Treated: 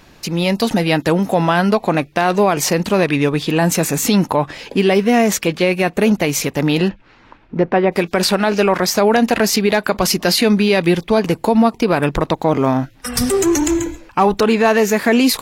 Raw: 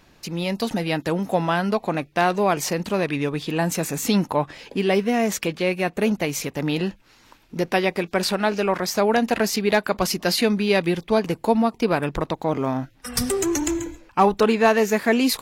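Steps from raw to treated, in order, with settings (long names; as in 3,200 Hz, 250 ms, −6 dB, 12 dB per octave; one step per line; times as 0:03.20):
0:06.88–0:07.91: low-pass filter 3,100 Hz → 1,300 Hz 12 dB per octave
brickwall limiter −13.5 dBFS, peak gain reduction 6 dB
level +8.5 dB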